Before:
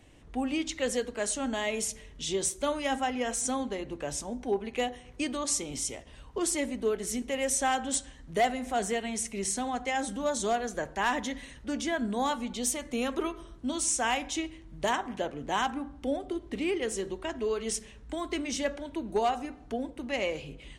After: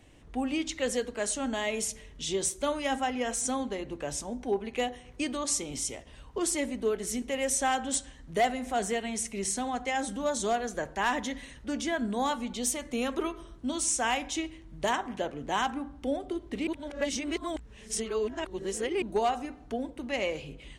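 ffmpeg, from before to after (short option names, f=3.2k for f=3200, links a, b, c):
-filter_complex "[0:a]asplit=3[a][b][c];[a]atrim=end=16.672[d];[b]atrim=start=16.668:end=19.022,asetpts=PTS-STARTPTS,areverse[e];[c]atrim=start=19.018[f];[d][e]acrossfade=d=0.004:c1=hsin:c2=hsin[g];[g][f]acrossfade=d=0.004:c1=hsin:c2=hsin"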